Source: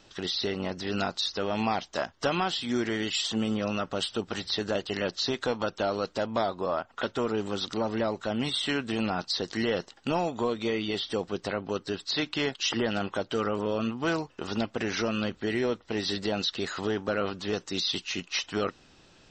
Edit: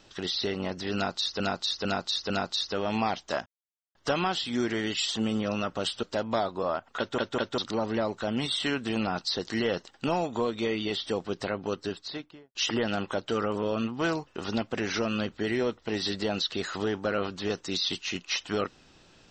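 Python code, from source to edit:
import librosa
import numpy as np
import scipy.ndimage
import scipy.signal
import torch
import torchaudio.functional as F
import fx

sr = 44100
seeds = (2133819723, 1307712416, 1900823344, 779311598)

y = fx.studio_fade_out(x, sr, start_s=11.78, length_s=0.8)
y = fx.edit(y, sr, fx.repeat(start_s=0.95, length_s=0.45, count=4),
    fx.insert_silence(at_s=2.11, length_s=0.49),
    fx.cut(start_s=4.19, length_s=1.87),
    fx.stutter_over(start_s=7.01, slice_s=0.2, count=3), tone=tone)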